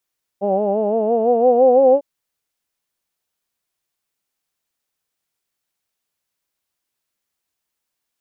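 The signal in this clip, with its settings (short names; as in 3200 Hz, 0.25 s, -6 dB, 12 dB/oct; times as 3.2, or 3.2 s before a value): formant vowel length 1.60 s, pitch 193 Hz, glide +6 st, vibrato 5.9 Hz, vibrato depth 0.85 st, F1 520 Hz, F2 760 Hz, F3 2800 Hz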